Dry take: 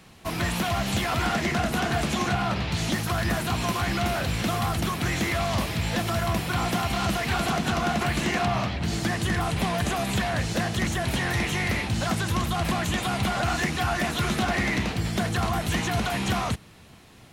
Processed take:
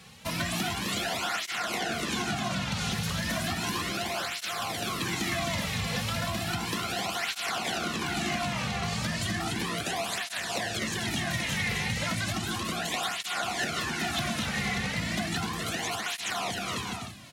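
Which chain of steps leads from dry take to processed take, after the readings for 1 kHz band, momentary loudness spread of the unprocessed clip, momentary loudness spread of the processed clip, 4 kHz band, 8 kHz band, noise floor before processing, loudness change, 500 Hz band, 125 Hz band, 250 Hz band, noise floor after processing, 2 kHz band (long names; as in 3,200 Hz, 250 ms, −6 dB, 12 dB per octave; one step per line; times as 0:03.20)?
−5.5 dB, 2 LU, 2 LU, 0.0 dB, 0.0 dB, −50 dBFS, −4.0 dB, −6.5 dB, −8.0 dB, −6.5 dB, −38 dBFS, −2.5 dB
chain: high-shelf EQ 8,900 Hz −8 dB
bouncing-ball delay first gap 260 ms, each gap 0.6×, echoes 5
downward compressor, threshold −27 dBFS, peak gain reduction 9 dB
high-shelf EQ 2,200 Hz +10.5 dB
through-zero flanger with one copy inverted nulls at 0.34 Hz, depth 3.3 ms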